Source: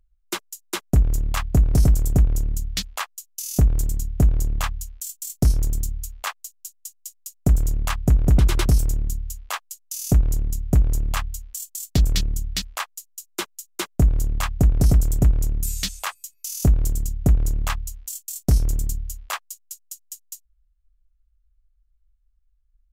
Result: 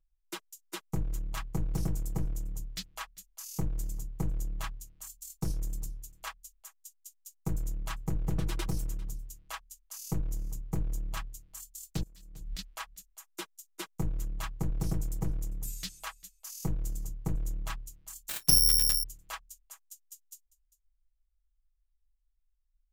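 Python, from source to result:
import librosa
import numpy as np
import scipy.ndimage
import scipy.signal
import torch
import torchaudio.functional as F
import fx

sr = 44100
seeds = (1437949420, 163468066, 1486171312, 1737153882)

y = np.minimum(x, 2.0 * 10.0 ** (-15.5 / 20.0) - x)
y = y + 0.89 * np.pad(y, (int(6.2 * sr / 1000.0), 0))[:len(y)]
y = fx.over_compress(y, sr, threshold_db=-26.0, ratio=-0.5, at=(12.03, 12.59))
y = y + 10.0 ** (-20.0 / 20.0) * np.pad(y, (int(398 * sr / 1000.0), 0))[:len(y)]
y = fx.resample_bad(y, sr, factor=8, down='none', up='zero_stuff', at=(18.29, 19.04))
y = y * 10.0 ** (-15.0 / 20.0)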